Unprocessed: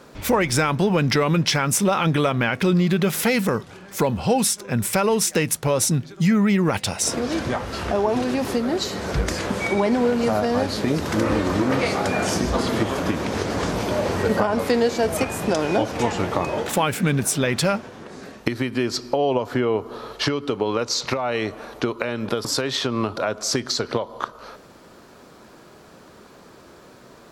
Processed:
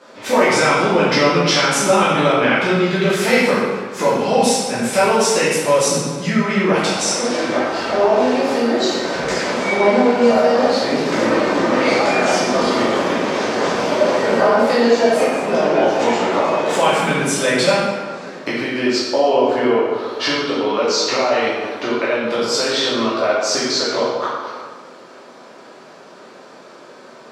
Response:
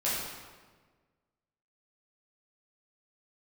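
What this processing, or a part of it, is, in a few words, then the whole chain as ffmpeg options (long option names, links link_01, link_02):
supermarket ceiling speaker: -filter_complex "[0:a]asettb=1/sr,asplit=3[link_01][link_02][link_03];[link_01]atrim=end=15.204[link_04];[link_02]atrim=start=15.2:end=15.81,asetpts=PTS-STARTPTS,afade=type=in:duration=0.004:curve=qsin,afade=type=out:start_time=0.606:duration=0.004:curve=qsin,highshelf=frequency=4600:gain=-11[link_05];[link_03]atrim=start=15.806[link_06];[link_04][link_05]acrossfade=duration=0.004:curve1=hsin:curve2=qsin[link_07];[link_07][link_06]acrossfade=duration=0.004:curve1=qsin:curve2=hsin,highpass=290,lowpass=6900[link_08];[1:a]atrim=start_sample=2205[link_09];[link_08][link_09]afir=irnorm=-1:irlink=0,volume=-1dB"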